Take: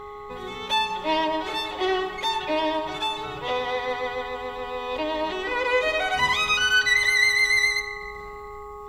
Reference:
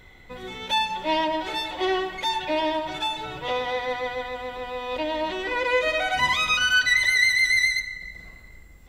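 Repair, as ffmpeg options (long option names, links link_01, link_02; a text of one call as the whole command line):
ffmpeg -i in.wav -af "bandreject=frequency=414.3:width_type=h:width=4,bandreject=frequency=828.6:width_type=h:width=4,bandreject=frequency=1242.9:width_type=h:width=4,bandreject=frequency=1100:width=30" out.wav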